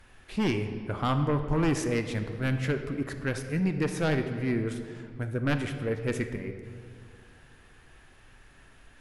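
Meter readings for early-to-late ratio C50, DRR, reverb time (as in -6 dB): 8.5 dB, 7.0 dB, 2.1 s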